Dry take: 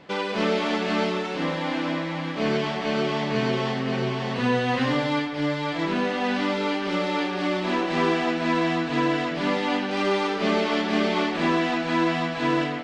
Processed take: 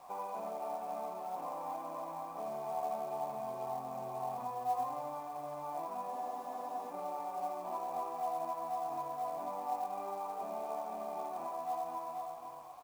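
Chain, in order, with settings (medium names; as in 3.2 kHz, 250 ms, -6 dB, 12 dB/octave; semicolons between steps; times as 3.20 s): fade out at the end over 1.94 s; compression 16:1, threshold -25 dBFS, peak gain reduction 8 dB; band-stop 1.1 kHz, Q 16; word length cut 6-bit, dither triangular; cascade formant filter a; delay 83 ms -4 dB; companded quantiser 6-bit; spectral freeze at 6.12 s, 0.79 s; trim +2.5 dB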